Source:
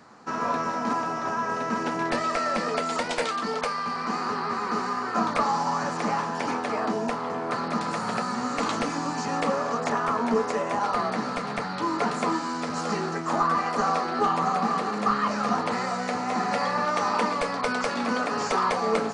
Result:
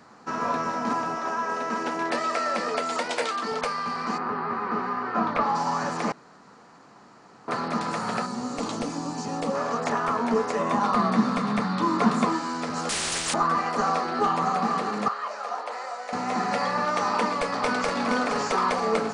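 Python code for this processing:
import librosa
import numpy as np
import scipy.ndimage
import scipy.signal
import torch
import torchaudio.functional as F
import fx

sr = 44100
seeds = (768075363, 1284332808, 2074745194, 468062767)

y = fx.highpass(x, sr, hz=250.0, slope=12, at=(1.15, 3.52))
y = fx.lowpass(y, sr, hz=fx.line((4.17, 1900.0), (5.54, 3300.0)), slope=12, at=(4.17, 5.54), fade=0.02)
y = fx.peak_eq(y, sr, hz=1700.0, db=-10.0, octaves=1.8, at=(8.26, 9.55))
y = fx.small_body(y, sr, hz=(210.0, 1100.0, 3600.0), ring_ms=45, db=12, at=(10.59, 12.25))
y = fx.spectral_comp(y, sr, ratio=10.0, at=(12.89, 13.34))
y = fx.ladder_highpass(y, sr, hz=460.0, resonance_pct=35, at=(15.08, 16.13))
y = fx.echo_throw(y, sr, start_s=17.05, length_s=0.89, ms=470, feedback_pct=50, wet_db=-5.5)
y = fx.edit(y, sr, fx.room_tone_fill(start_s=6.12, length_s=1.36), tone=tone)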